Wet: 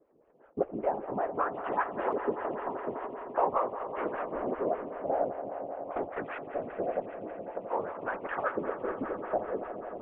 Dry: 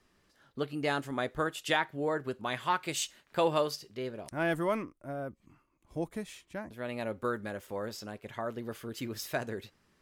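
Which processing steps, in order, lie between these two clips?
CVSD 16 kbps; recorder AGC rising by 5.8 dB/s; HPF 170 Hz; tilt shelf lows -6 dB, about 670 Hz; compressor 2.5:1, threshold -38 dBFS, peak gain reduction 10 dB; LFO low-pass saw up 0.47 Hz 430–1500 Hz; whisperiser; 7–7.57 vowel filter u; swelling echo 85 ms, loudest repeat 5, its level -14 dB; photocell phaser 5.1 Hz; gain +6.5 dB

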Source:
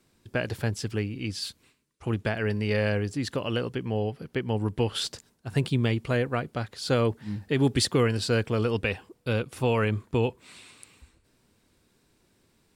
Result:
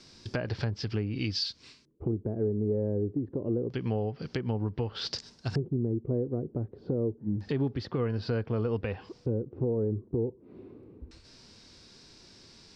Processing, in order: treble ducked by the level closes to 1300 Hz, closed at -24 dBFS; bell 5100 Hz +6.5 dB 0.75 oct; LFO low-pass square 0.27 Hz 380–5200 Hz; compressor 6:1, threshold -37 dBFS, peak gain reduction 18.5 dB; harmonic-percussive split harmonic +5 dB; gain +5.5 dB

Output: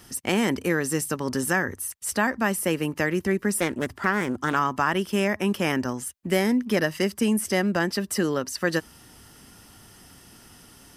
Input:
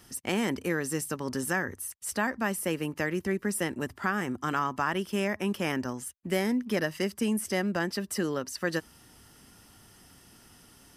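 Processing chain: 3.6–4.56 Doppler distortion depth 0.29 ms; gain +5.5 dB

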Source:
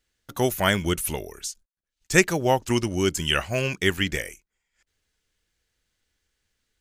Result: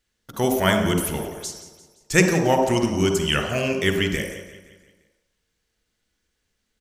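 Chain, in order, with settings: feedback echo 0.173 s, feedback 50%, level -15 dB; on a send at -3 dB: reverb RT60 0.75 s, pre-delay 42 ms

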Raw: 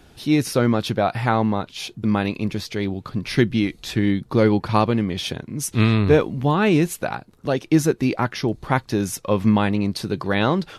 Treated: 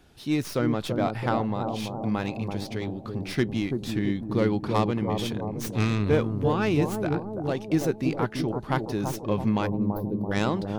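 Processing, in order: tracing distortion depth 0.098 ms; spectral gain 9.66–10.32, 680–11000 Hz -25 dB; analogue delay 0.334 s, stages 2048, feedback 60%, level -4.5 dB; gain -7.5 dB

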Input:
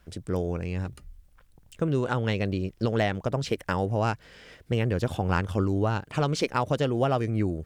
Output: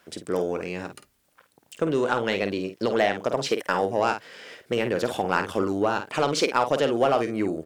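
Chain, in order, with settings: HPF 310 Hz 12 dB/oct; doubler 50 ms -9.5 dB; in parallel at -3 dB: soft clip -23.5 dBFS, distortion -11 dB; on the sum: gain +1.5 dB

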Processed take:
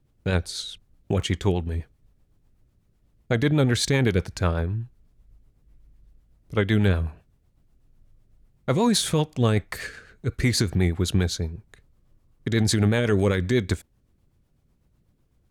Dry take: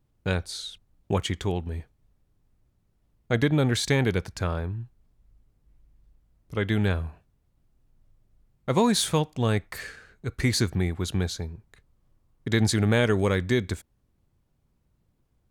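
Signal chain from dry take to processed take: limiter -16.5 dBFS, peak gain reduction 6.5 dB; rotary speaker horn 8 Hz; gain +6 dB

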